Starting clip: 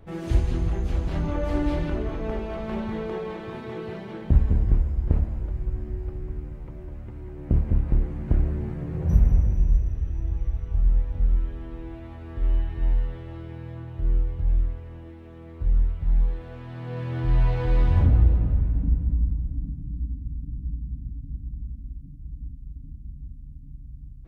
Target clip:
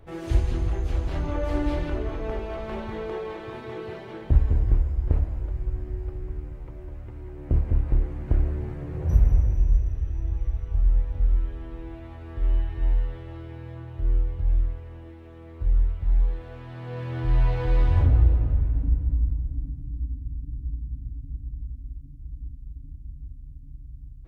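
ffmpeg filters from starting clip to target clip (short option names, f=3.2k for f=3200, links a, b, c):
-af "equalizer=f=190:w=3.4:g=-14"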